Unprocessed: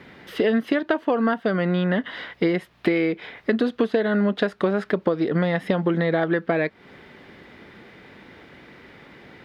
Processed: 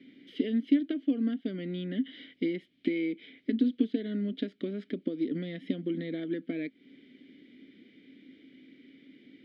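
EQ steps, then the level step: vowel filter i; low shelf 160 Hz -4 dB; band shelf 1600 Hz -8 dB; +4.0 dB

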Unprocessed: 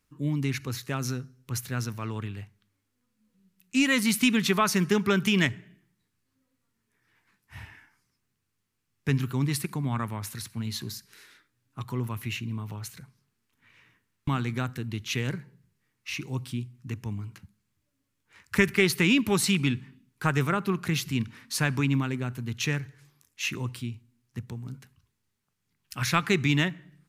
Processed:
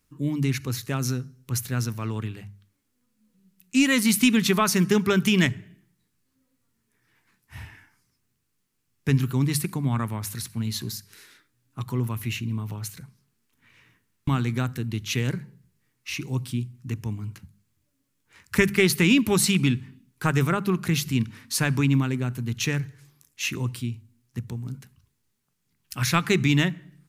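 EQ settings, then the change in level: low shelf 440 Hz +5.5 dB; high shelf 4800 Hz +6.5 dB; notches 50/100/150/200 Hz; 0.0 dB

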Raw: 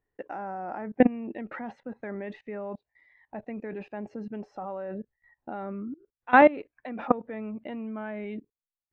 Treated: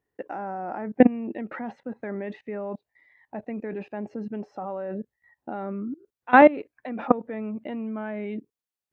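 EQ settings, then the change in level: HPF 240 Hz 6 dB/oct; low shelf 370 Hz +8 dB; +1.5 dB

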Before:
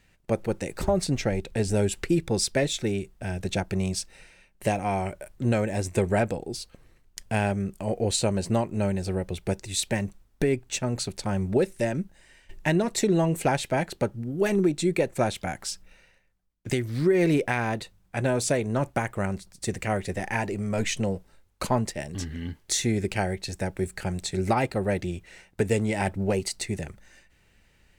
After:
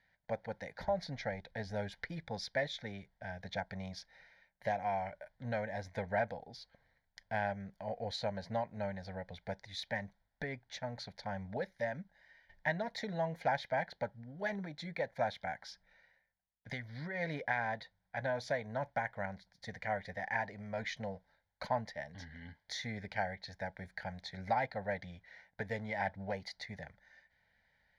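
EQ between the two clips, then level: band-pass 1900 Hz, Q 0.68; tilt -2.5 dB/oct; fixed phaser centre 1800 Hz, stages 8; -2.0 dB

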